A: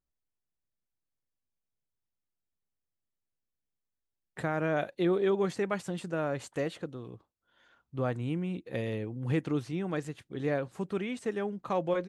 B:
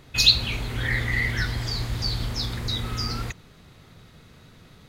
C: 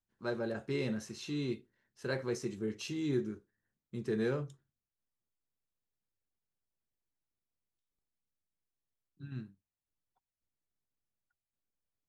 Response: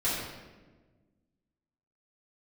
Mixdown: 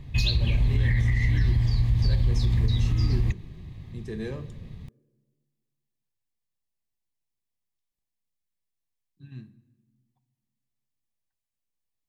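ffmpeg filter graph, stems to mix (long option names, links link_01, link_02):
-filter_complex "[1:a]bass=frequency=250:gain=15,treble=frequency=4000:gain=-9,volume=-2dB[link_01];[2:a]volume=1dB,asplit=2[link_02][link_03];[link_03]volume=-23.5dB[link_04];[3:a]atrim=start_sample=2205[link_05];[link_04][link_05]afir=irnorm=-1:irlink=0[link_06];[link_01][link_02][link_06]amix=inputs=3:normalize=0,asuperstop=centerf=1400:order=4:qfactor=3.5,equalizer=frequency=430:width_type=o:width=2.2:gain=-4.5,alimiter=limit=-14.5dB:level=0:latency=1:release=117"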